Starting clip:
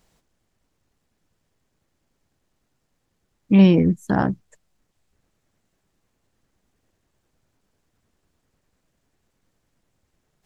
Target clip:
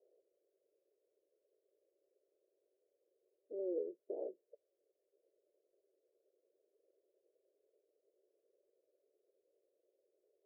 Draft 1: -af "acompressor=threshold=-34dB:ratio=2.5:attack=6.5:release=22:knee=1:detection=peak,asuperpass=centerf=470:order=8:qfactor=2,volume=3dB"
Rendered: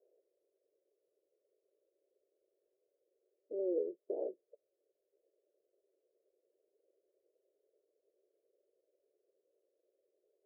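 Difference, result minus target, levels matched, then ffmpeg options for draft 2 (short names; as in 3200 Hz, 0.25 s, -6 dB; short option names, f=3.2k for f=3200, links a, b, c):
compressor: peak gain reduction -4 dB
-af "acompressor=threshold=-41dB:ratio=2.5:attack=6.5:release=22:knee=1:detection=peak,asuperpass=centerf=470:order=8:qfactor=2,volume=3dB"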